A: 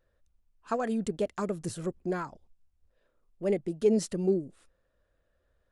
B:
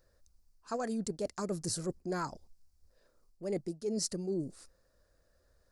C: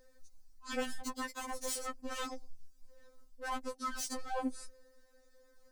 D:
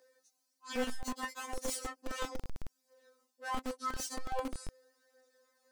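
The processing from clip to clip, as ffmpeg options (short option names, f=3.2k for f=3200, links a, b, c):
-af "highshelf=f=3.9k:t=q:w=3:g=6.5,areverse,acompressor=threshold=-35dB:ratio=8,areverse,volume=3dB"
-af "alimiter=level_in=4.5dB:limit=-24dB:level=0:latency=1:release=79,volume=-4.5dB,aeval=exprs='0.0141*(abs(mod(val(0)/0.0141+3,4)-2)-1)':c=same,afftfilt=real='re*3.46*eq(mod(b,12),0)':imag='im*3.46*eq(mod(b,12),0)':win_size=2048:overlap=0.75,volume=7.5dB"
-filter_complex "[0:a]flanger=delay=17.5:depth=3:speed=0.44,acrossover=split=260|1500|7200[a][b][c][d];[a]acrusher=bits=6:mix=0:aa=0.000001[e];[e][b][c][d]amix=inputs=4:normalize=0,volume=2.5dB"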